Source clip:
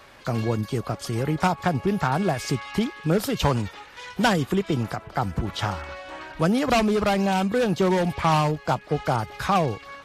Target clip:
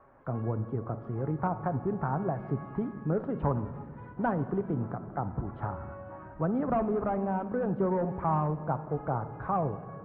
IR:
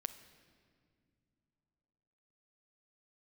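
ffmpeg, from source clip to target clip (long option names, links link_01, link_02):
-filter_complex "[0:a]lowpass=frequency=1300:width=0.5412,lowpass=frequency=1300:width=1.3066[link_01];[1:a]atrim=start_sample=2205,asetrate=42336,aresample=44100[link_02];[link_01][link_02]afir=irnorm=-1:irlink=0,volume=-5.5dB"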